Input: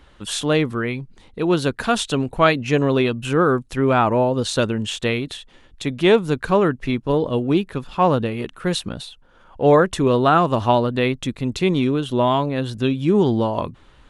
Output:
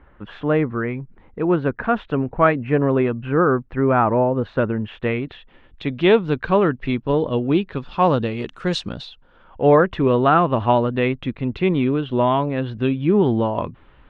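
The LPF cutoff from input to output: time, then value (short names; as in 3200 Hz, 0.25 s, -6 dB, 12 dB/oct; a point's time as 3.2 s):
LPF 24 dB/oct
4.79 s 2000 Hz
6 s 3600 Hz
7.57 s 3600 Hz
8.56 s 7200 Hz
9.69 s 2900 Hz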